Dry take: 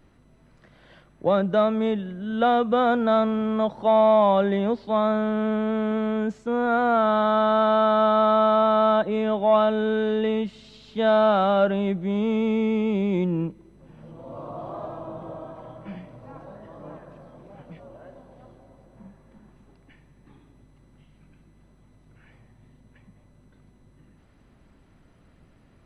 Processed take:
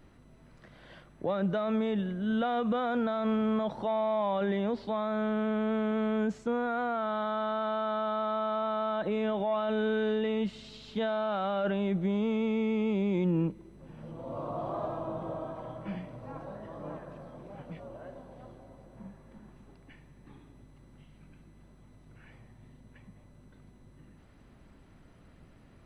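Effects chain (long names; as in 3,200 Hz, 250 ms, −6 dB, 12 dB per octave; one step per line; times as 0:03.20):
dynamic equaliser 2,200 Hz, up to +3 dB, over −34 dBFS, Q 0.87
brickwall limiter −22 dBFS, peak gain reduction 14 dB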